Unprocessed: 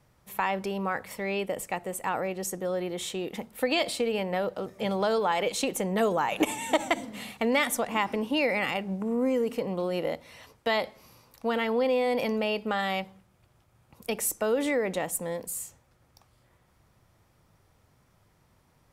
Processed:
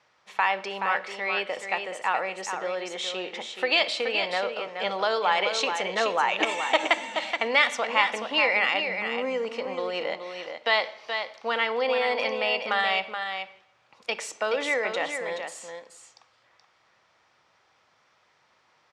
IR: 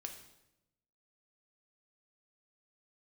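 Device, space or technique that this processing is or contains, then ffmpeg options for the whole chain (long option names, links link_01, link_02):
filtered reverb send: -filter_complex "[0:a]lowpass=frequency=6000:width=0.5412,lowpass=frequency=6000:width=1.3066,lowshelf=frequency=480:gain=-3.5,asplit=2[link_01][link_02];[link_02]highpass=290,lowpass=4600[link_03];[1:a]atrim=start_sample=2205[link_04];[link_03][link_04]afir=irnorm=-1:irlink=0,volume=-2.5dB[link_05];[link_01][link_05]amix=inputs=2:normalize=0,highpass=frequency=1100:poles=1,aecho=1:1:426:0.447,volume=5dB"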